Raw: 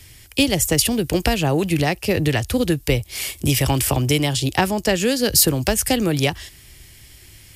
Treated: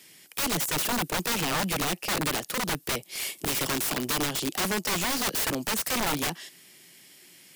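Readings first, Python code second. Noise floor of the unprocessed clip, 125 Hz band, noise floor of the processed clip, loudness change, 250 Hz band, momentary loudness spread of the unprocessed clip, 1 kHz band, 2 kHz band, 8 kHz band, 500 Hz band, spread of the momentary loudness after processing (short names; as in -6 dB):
-46 dBFS, -16.0 dB, -54 dBFS, -8.0 dB, -12.0 dB, 6 LU, -4.5 dB, -5.0 dB, -7.0 dB, -12.5 dB, 5 LU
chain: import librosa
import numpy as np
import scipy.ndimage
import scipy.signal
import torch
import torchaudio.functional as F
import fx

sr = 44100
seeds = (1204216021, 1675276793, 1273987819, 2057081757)

y = scipy.signal.sosfilt(scipy.signal.ellip(4, 1.0, 80, 170.0, 'highpass', fs=sr, output='sos'), x)
y = (np.mod(10.0 ** (17.5 / 20.0) * y + 1.0, 2.0) - 1.0) / 10.0 ** (17.5 / 20.0)
y = y * librosa.db_to_amplitude(-4.5)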